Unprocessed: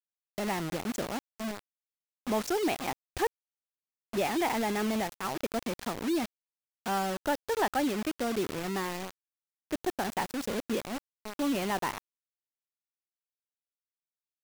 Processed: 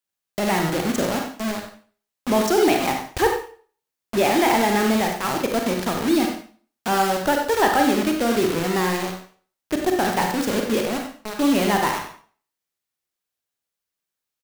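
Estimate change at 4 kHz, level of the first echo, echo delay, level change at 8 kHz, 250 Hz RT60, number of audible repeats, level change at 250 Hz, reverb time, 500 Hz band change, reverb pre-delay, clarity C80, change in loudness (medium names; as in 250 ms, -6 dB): +11.0 dB, -10.5 dB, 93 ms, +11.0 dB, 0.45 s, 1, +11.0 dB, 0.45 s, +11.5 dB, 34 ms, 7.5 dB, +11.0 dB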